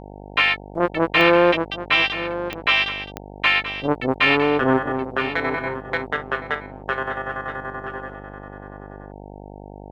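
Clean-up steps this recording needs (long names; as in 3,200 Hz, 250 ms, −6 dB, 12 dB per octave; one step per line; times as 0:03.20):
click removal
hum removal 50 Hz, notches 18
echo removal 975 ms −12 dB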